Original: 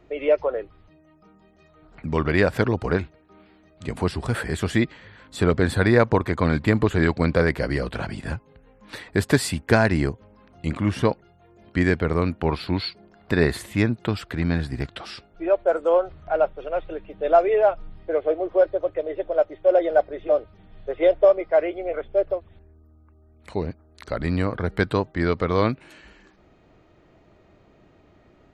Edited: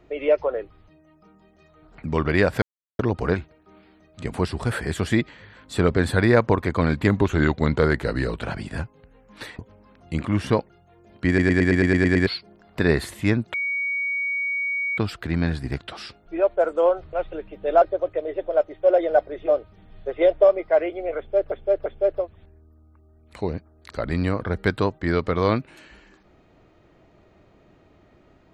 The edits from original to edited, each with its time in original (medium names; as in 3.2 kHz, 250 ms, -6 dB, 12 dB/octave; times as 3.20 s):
2.62 s: insert silence 0.37 s
6.70–7.94 s: speed 92%
9.11–10.11 s: delete
11.80 s: stutter in place 0.11 s, 9 plays
14.06 s: add tone 2.25 kHz -22.5 dBFS 1.44 s
16.21–16.70 s: delete
17.39–18.63 s: delete
21.99–22.33 s: loop, 3 plays